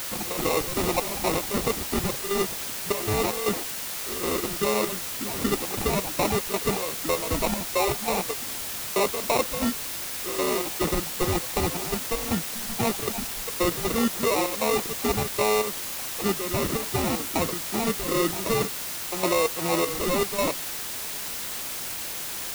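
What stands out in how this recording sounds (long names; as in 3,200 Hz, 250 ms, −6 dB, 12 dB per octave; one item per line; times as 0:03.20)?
aliases and images of a low sample rate 1,600 Hz, jitter 0%
chopped level 2.6 Hz, depth 65%, duty 60%
a quantiser's noise floor 6 bits, dither triangular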